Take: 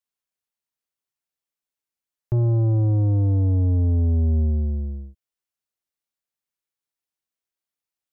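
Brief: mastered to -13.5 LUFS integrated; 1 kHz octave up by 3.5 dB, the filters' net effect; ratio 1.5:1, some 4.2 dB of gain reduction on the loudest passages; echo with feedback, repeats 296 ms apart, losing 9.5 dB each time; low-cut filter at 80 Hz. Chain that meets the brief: high-pass 80 Hz; peaking EQ 1 kHz +5 dB; compression 1.5:1, threshold -28 dBFS; feedback delay 296 ms, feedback 33%, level -9.5 dB; trim +12.5 dB

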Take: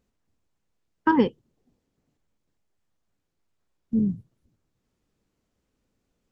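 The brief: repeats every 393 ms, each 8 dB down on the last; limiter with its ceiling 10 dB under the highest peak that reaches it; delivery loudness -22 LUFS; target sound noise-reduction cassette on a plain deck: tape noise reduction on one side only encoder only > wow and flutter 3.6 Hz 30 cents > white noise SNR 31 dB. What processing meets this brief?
peak limiter -18.5 dBFS; feedback delay 393 ms, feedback 40%, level -8 dB; tape noise reduction on one side only encoder only; wow and flutter 3.6 Hz 30 cents; white noise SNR 31 dB; trim +10 dB

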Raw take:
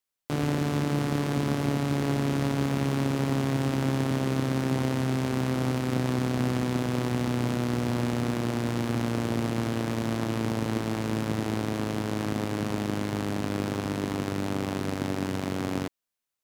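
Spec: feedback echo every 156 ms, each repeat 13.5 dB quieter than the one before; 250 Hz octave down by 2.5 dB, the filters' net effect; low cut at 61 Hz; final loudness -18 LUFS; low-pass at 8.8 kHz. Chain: high-pass 61 Hz; low-pass 8.8 kHz; peaking EQ 250 Hz -3 dB; feedback delay 156 ms, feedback 21%, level -13.5 dB; trim +11.5 dB

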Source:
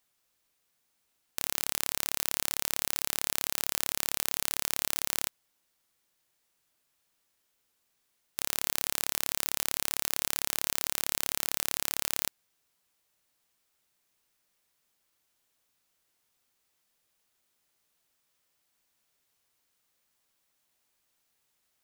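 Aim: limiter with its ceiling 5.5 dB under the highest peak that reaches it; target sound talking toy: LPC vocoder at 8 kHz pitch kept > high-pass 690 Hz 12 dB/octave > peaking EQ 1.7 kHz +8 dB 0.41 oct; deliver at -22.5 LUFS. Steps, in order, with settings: peak limiter -7.5 dBFS; LPC vocoder at 8 kHz pitch kept; high-pass 690 Hz 12 dB/octave; peaking EQ 1.7 kHz +8 dB 0.41 oct; trim +21.5 dB

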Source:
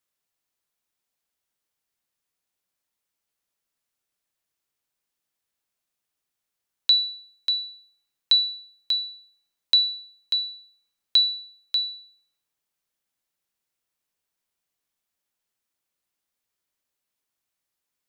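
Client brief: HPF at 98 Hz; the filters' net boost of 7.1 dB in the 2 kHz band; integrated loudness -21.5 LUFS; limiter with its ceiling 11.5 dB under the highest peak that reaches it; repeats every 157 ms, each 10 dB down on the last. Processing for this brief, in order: high-pass 98 Hz; peaking EQ 2 kHz +9 dB; peak limiter -17.5 dBFS; feedback delay 157 ms, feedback 32%, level -10 dB; trim +3 dB

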